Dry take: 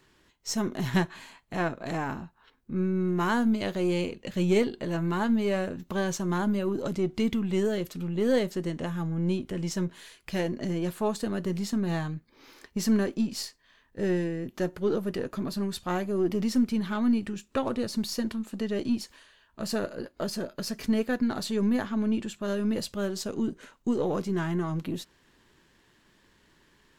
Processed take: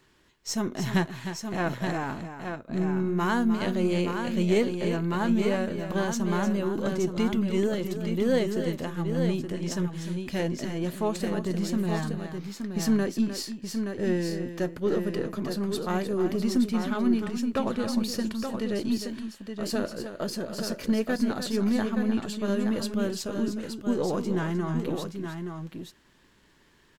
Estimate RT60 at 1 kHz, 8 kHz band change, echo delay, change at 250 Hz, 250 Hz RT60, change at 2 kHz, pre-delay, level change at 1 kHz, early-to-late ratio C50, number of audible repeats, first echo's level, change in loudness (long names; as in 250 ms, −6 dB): no reverb audible, +1.0 dB, 305 ms, +1.0 dB, no reverb audible, +1.0 dB, no reverb audible, +1.0 dB, no reverb audible, 2, −10.0 dB, +1.0 dB